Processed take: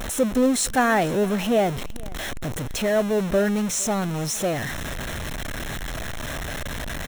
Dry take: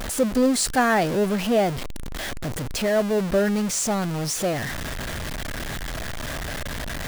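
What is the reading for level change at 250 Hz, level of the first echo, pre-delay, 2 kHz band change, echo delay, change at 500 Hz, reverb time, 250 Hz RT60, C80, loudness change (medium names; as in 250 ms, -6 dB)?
0.0 dB, -23.0 dB, no reverb, 0.0 dB, 457 ms, 0.0 dB, no reverb, no reverb, no reverb, 0.0 dB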